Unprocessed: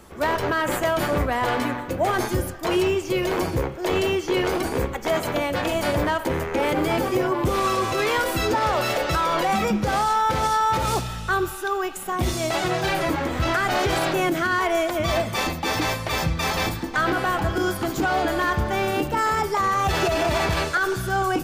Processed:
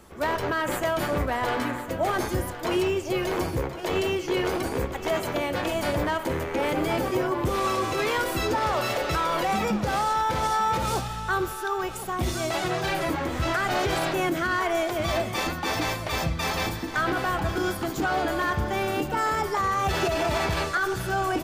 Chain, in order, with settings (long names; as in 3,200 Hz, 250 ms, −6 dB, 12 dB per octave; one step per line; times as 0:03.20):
single-tap delay 1,062 ms −12.5 dB
level −3.5 dB